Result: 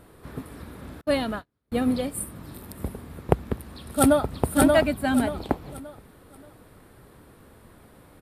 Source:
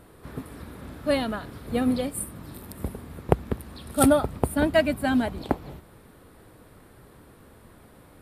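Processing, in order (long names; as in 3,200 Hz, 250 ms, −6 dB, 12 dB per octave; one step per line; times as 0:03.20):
0:01.01–0:01.72: noise gate −31 dBFS, range −38 dB
0:03.73–0:04.32: delay throw 580 ms, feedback 30%, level −1.5 dB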